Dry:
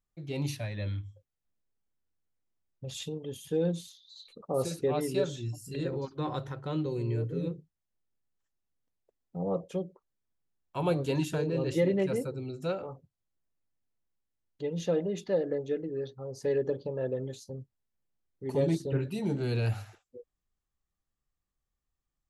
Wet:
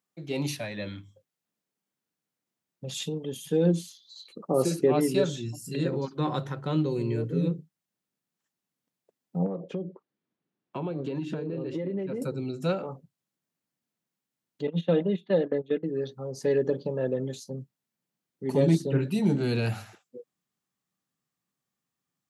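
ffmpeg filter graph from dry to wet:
-filter_complex "[0:a]asettb=1/sr,asplit=3[s0][s1][s2];[s0]atrim=end=3.664[s3];[s1]atrim=start=3.66:end=5.08,asetpts=PTS-STARTPTS,afade=t=in:d=0.004:c=qsin,afade=t=out:st=1.416:d=0.004:c=qsin,equalizer=f=340:t=o:w=0.36:g=8,bandreject=f=3700:w=8.4[s4];[s2]atrim=start=5.076[s5];[s3][s4]acrossfade=d=0.004:c1=hsin:c2=qsin[s6];[s6][s5]acrossfade=d=0.004:c1=qsin:c2=hsin,asettb=1/sr,asplit=3[s7][s8][s9];[s7]atrim=end=9.464[s10];[s8]atrim=start=9.46:end=12.22,asetpts=PTS-STARTPTS,afade=t=in:d=0.004:c=qsin,afade=t=out:st=2.756:d=0.004:c=qsin,lowpass=3400,equalizer=f=350:t=o:w=1.3:g=7.5,acompressor=threshold=0.02:ratio=10:attack=3.2:release=140:knee=1:detection=peak[s11];[s9]atrim=start=12.216[s12];[s10][s11]acrossfade=d=0.004:c1=hsin:c2=qsin[s13];[s13][s12]acrossfade=d=0.004:c1=qsin:c2=hsin,asettb=1/sr,asplit=3[s14][s15][s16];[s14]atrim=end=14.674[s17];[s15]atrim=start=14.67:end=15.83,asetpts=PTS-STARTPTS,afade=t=in:d=0.004:c=qsin,afade=t=out:st=1.156:d=0.004:c=qsin,agate=range=0.141:threshold=0.02:ratio=16:release=100:detection=peak,highshelf=f=4700:t=q:w=3:g=-8.5,bandreject=f=4800:w=5.1[s18];[s16]atrim=start=15.826[s19];[s17][s18]acrossfade=d=0.004:c1=hsin:c2=qsin[s20];[s20][s19]acrossfade=d=0.004:c1=qsin:c2=hsin,highpass=f=170:w=0.5412,highpass=f=170:w=1.3066,asubboost=boost=2.5:cutoff=220,volume=1.88"

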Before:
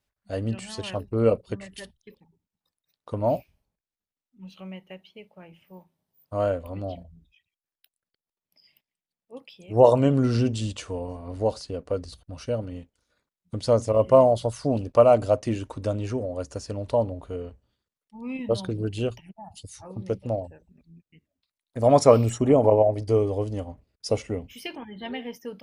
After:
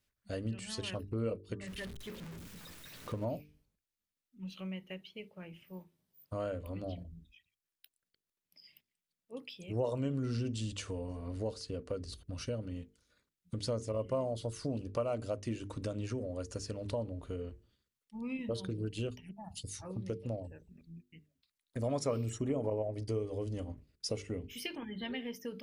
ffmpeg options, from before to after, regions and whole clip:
-filter_complex "[0:a]asettb=1/sr,asplit=3[s0][s1][s2];[s0]atrim=end=1.674[s3];[s1]atrim=start=1.67:end=3.25,asetpts=PTS-STARTPTS,afade=t=in:d=0.004:c=qsin,afade=t=out:st=1.576:d=0.004:c=qsin,aeval=exprs='val(0)+0.5*0.00944*sgn(val(0))':c=same,acrossover=split=3000[s4][s5];[s5]acompressor=threshold=0.00224:ratio=4:attack=1:release=60[s6];[s4][s6]amix=inputs=2:normalize=0[s7];[s2]atrim=start=3.246[s8];[s3][s7]acrossfade=d=0.004:c1=hsin:c2=qsin[s9];[s9][s8]acrossfade=d=0.004:c1=qsin:c2=hsin,equalizer=f=780:w=1.4:g=-9,bandreject=f=50:t=h:w=6,bandreject=f=100:t=h:w=6,bandreject=f=150:t=h:w=6,bandreject=f=200:t=h:w=6,bandreject=f=250:t=h:w=6,bandreject=f=300:t=h:w=6,bandreject=f=350:t=h:w=6,bandreject=f=400:t=h:w=6,bandreject=f=450:t=h:w=6,acompressor=threshold=0.0112:ratio=2.5,volume=1.12"

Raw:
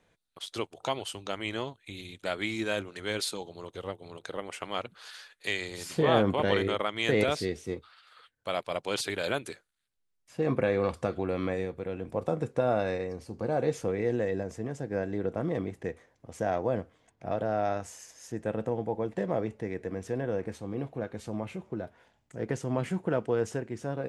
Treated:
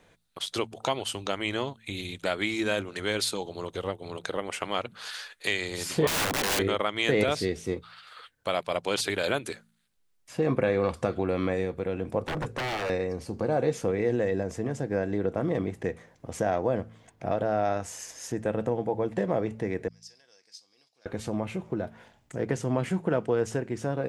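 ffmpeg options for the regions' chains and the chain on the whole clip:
-filter_complex "[0:a]asettb=1/sr,asplit=3[s0][s1][s2];[s0]atrim=end=6.074[s3];[s1]atrim=start=6.07:end=6.59,asetpts=PTS-STARTPTS,afade=t=in:d=0.004:c=qsin,afade=t=out:st=0.516:d=0.004:c=qsin,highpass=160,lowpass=6200,aeval=exprs='(mod(18.8*val(0)+1,2)-1)/18.8':c=same[s4];[s2]atrim=start=6.586[s5];[s3][s4]acrossfade=d=0.004:c1=hsin:c2=qsin[s6];[s6][s5]acrossfade=d=0.004:c1=qsin:c2=hsin,asettb=1/sr,asplit=3[s7][s8][s9];[s7]atrim=end=12.224[s10];[s8]atrim=start=12.22:end=12.9,asetpts=PTS-STARTPTS,afade=t=in:d=0.004:c=qsin,afade=t=out:st=0.676:d=0.004:c=qsin,aeval=exprs='0.0299*(abs(mod(val(0)/0.0299+3,4)-2)-1)':c=same,adynamicequalizer=threshold=0.00282:dfrequency=2100:dqfactor=0.7:tfrequency=2100:tqfactor=0.7:attack=5:release=100:ratio=0.375:range=3:mode=cutabove:tftype=highshelf[s11];[s9]atrim=start=12.896[s12];[s10][s11]acrossfade=d=0.004:c1=hsin:c2=qsin[s13];[s13][s12]acrossfade=d=0.004:c1=qsin:c2=hsin,asettb=1/sr,asplit=3[s14][s15][s16];[s14]atrim=end=19.884[s17];[s15]atrim=start=19.88:end=21.06,asetpts=PTS-STARTPTS,afade=t=in:d=0.004:c=qsin,afade=t=out:st=1.176:d=0.004:c=qsin,bandpass=f=5000:t=q:w=12,aemphasis=mode=production:type=75kf[s18];[s16]atrim=start=21.056[s19];[s17][s18]acrossfade=d=0.004:c1=hsin:c2=qsin[s20];[s20][s19]acrossfade=d=0.004:c1=qsin:c2=hsin,bandreject=f=55.76:t=h:w=4,bandreject=f=111.52:t=h:w=4,bandreject=f=167.28:t=h:w=4,bandreject=f=223.04:t=h:w=4,acompressor=threshold=0.00891:ratio=1.5,volume=2.66"

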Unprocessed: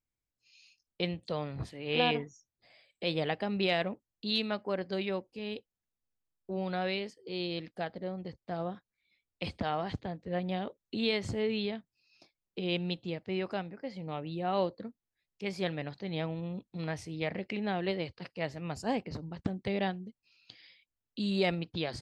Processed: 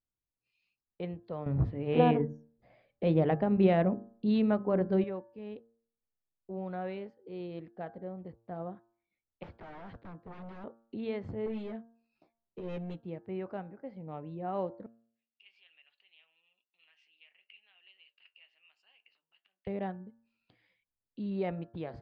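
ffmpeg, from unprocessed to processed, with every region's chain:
-filter_complex "[0:a]asettb=1/sr,asplit=3[s0][s1][s2];[s0]atrim=end=1.464[s3];[s1]atrim=start=1.46:end=5.04,asetpts=PTS-STARTPTS,afade=t=in:d=0.004:c=qsin,afade=t=out:st=3.576:d=0.004:c=qsin,lowshelf=f=360:g=11,bandreject=f=50:t=h:w=6,bandreject=f=100:t=h:w=6,bandreject=f=150:t=h:w=6,bandreject=f=200:t=h:w=6,bandreject=f=250:t=h:w=6,bandreject=f=300:t=h:w=6,bandreject=f=350:t=h:w=6,bandreject=f=400:t=h:w=6,bandreject=f=450:t=h:w=6,acontrast=34[s4];[s2]atrim=start=5.036[s5];[s3][s4]acrossfade=d=0.004:c1=hsin:c2=qsin[s6];[s6][s5]acrossfade=d=0.004:c1=qsin:c2=hsin,asettb=1/sr,asplit=3[s7][s8][s9];[s7]atrim=end=9.434[s10];[s8]atrim=start=9.43:end=10.64,asetpts=PTS-STARTPTS,afade=t=in:d=0.004:c=qsin,afade=t=out:st=1.206:d=0.004:c=qsin,highshelf=f=3100:g=8,aeval=exprs='0.015*(abs(mod(val(0)/0.015+3,4)-2)-1)':c=same,acrossover=split=5200[s11][s12];[s12]acompressor=threshold=0.00126:ratio=4:attack=1:release=60[s13];[s11][s13]amix=inputs=2:normalize=0[s14];[s9]atrim=start=10.636[s15];[s10][s14]acrossfade=d=0.004:c1=hsin:c2=qsin[s16];[s16][s15]acrossfade=d=0.004:c1=qsin:c2=hsin,asettb=1/sr,asplit=3[s17][s18][s19];[s17]atrim=end=11.464[s20];[s18]atrim=start=11.46:end=13.01,asetpts=PTS-STARTPTS,afade=t=in:d=0.004:c=qsin,afade=t=out:st=1.546:d=0.004:c=qsin,aeval=exprs='clip(val(0),-1,0.0237)':c=same,asplit=2[s21][s22];[s22]adelay=13,volume=0.708[s23];[s21][s23]amix=inputs=2:normalize=0,atrim=end_sample=68355[s24];[s19]atrim=start=13.006[s25];[s20][s24]acrossfade=d=0.004:c1=hsin:c2=qsin[s26];[s26][s25]acrossfade=d=0.004:c1=qsin:c2=hsin,asettb=1/sr,asplit=3[s27][s28][s29];[s27]atrim=end=14.864[s30];[s28]atrim=start=14.86:end=19.67,asetpts=PTS-STARTPTS,afade=t=in:d=0.004:c=qsin,afade=t=out:st=4.806:d=0.004:c=qsin,acompressor=threshold=0.00891:ratio=4:attack=3.2:release=140:knee=1:detection=peak,flanger=delay=5.3:depth=6.1:regen=-59:speed=1:shape=sinusoidal,highpass=f=2800:t=q:w=14[s31];[s29]atrim=start=19.666[s32];[s30][s31]acrossfade=d=0.004:c1=hsin:c2=qsin[s33];[s33][s32]acrossfade=d=0.004:c1=qsin:c2=hsin,lowpass=1300,bandreject=f=114.8:t=h:w=4,bandreject=f=229.6:t=h:w=4,bandreject=f=344.4:t=h:w=4,bandreject=f=459.2:t=h:w=4,bandreject=f=574:t=h:w=4,bandreject=f=688.8:t=h:w=4,bandreject=f=803.6:t=h:w=4,bandreject=f=918.4:t=h:w=4,bandreject=f=1033.2:t=h:w=4,bandreject=f=1148:t=h:w=4,bandreject=f=1262.8:t=h:w=4,bandreject=f=1377.6:t=h:w=4,bandreject=f=1492.4:t=h:w=4,bandreject=f=1607.2:t=h:w=4,bandreject=f=1722:t=h:w=4,volume=0.668"

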